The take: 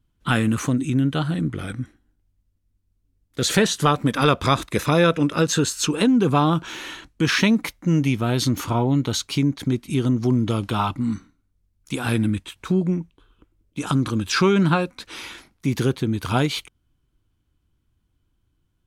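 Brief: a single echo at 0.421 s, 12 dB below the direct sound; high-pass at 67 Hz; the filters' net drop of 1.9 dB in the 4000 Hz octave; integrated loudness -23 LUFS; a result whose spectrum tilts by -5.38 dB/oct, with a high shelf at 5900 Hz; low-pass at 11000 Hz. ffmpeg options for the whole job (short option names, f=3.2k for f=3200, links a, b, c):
-af "highpass=67,lowpass=11k,equalizer=f=4k:t=o:g=-3.5,highshelf=f=5.9k:g=3.5,aecho=1:1:421:0.251,volume=-1.5dB"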